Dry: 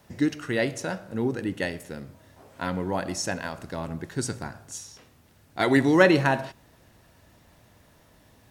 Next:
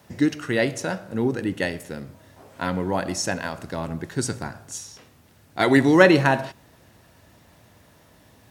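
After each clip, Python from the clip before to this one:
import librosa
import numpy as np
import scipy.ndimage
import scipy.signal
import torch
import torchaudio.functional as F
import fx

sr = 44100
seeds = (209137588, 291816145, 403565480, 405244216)

y = scipy.signal.sosfilt(scipy.signal.butter(2, 60.0, 'highpass', fs=sr, output='sos'), x)
y = F.gain(torch.from_numpy(y), 3.5).numpy()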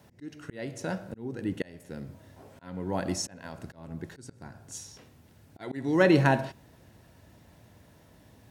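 y = fx.low_shelf(x, sr, hz=480.0, db=6.0)
y = fx.notch(y, sr, hz=1200.0, q=15.0)
y = fx.auto_swell(y, sr, attack_ms=515.0)
y = F.gain(torch.from_numpy(y), -6.0).numpy()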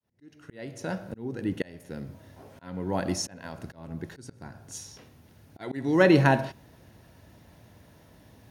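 y = fx.fade_in_head(x, sr, length_s=1.09)
y = fx.notch(y, sr, hz=7700.0, q=6.3)
y = F.gain(torch.from_numpy(y), 2.0).numpy()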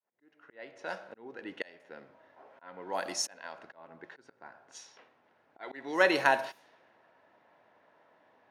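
y = scipy.signal.sosfilt(scipy.signal.butter(2, 670.0, 'highpass', fs=sr, output='sos'), x)
y = fx.env_lowpass(y, sr, base_hz=1500.0, full_db=-30.0)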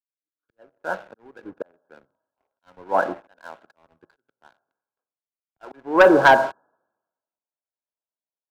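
y = fx.brickwall_lowpass(x, sr, high_hz=1700.0)
y = fx.leveller(y, sr, passes=2)
y = fx.band_widen(y, sr, depth_pct=100)
y = F.gain(torch.from_numpy(y), -1.0).numpy()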